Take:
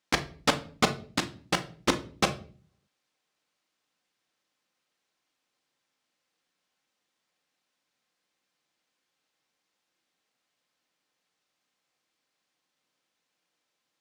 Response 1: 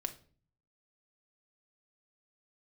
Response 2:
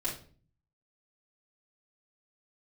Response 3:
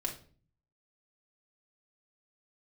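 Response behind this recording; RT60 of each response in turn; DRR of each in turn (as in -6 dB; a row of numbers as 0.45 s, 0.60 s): 1; 0.45 s, 0.45 s, 0.45 s; 6.0 dB, -7.0 dB, -0.5 dB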